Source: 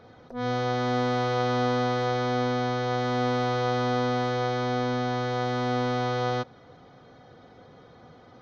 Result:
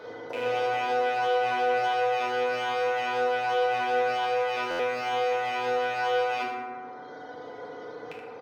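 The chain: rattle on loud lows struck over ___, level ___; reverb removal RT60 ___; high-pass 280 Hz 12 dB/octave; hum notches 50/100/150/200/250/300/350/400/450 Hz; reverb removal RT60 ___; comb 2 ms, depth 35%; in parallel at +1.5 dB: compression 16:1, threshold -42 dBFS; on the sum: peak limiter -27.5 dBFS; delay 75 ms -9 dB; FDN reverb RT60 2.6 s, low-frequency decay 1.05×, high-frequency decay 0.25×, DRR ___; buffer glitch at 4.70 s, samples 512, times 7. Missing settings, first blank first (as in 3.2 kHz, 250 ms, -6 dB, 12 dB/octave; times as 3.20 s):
-46 dBFS, -22 dBFS, 0.61 s, 1.3 s, -6 dB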